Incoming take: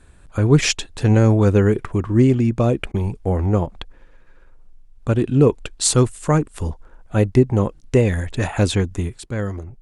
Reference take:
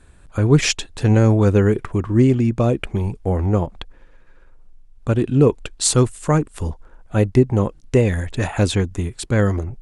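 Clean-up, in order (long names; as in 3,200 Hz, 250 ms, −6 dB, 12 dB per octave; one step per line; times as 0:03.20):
repair the gap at 0:02.92, 20 ms
level correction +7.5 dB, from 0:09.18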